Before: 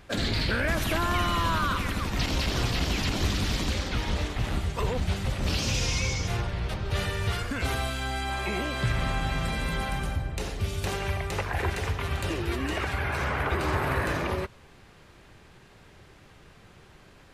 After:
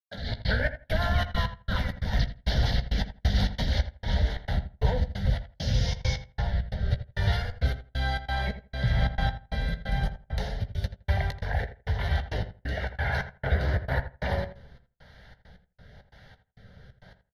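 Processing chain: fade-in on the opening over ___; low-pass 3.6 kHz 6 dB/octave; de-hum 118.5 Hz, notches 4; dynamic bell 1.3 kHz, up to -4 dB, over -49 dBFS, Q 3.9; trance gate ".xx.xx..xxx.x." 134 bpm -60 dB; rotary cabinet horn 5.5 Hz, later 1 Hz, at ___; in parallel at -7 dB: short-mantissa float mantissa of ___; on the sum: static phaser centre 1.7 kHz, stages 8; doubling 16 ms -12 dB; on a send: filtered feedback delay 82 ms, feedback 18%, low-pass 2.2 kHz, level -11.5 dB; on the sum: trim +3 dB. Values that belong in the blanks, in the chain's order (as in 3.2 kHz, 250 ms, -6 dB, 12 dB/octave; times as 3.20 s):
0.57 s, 4.73 s, 6-bit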